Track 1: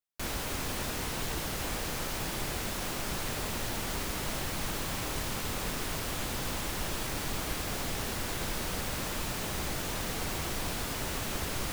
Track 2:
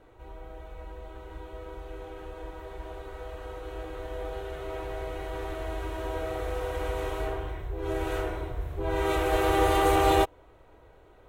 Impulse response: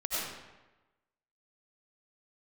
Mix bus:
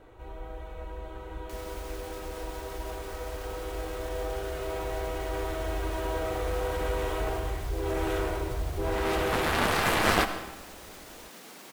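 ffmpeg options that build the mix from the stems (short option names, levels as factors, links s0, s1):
-filter_complex "[0:a]highpass=f=200:w=0.5412,highpass=f=200:w=1.3066,alimiter=level_in=2.37:limit=0.0631:level=0:latency=1:release=69,volume=0.422,adelay=1300,volume=0.473[s0];[1:a]aeval=exprs='0.316*(cos(1*acos(clip(val(0)/0.316,-1,1)))-cos(1*PI/2))+0.126*(cos(3*acos(clip(val(0)/0.316,-1,1)))-cos(3*PI/2))+0.0316*(cos(7*acos(clip(val(0)/0.316,-1,1)))-cos(7*PI/2))':c=same,volume=1.33,asplit=2[s1][s2];[s2]volume=0.168[s3];[2:a]atrim=start_sample=2205[s4];[s3][s4]afir=irnorm=-1:irlink=0[s5];[s0][s1][s5]amix=inputs=3:normalize=0"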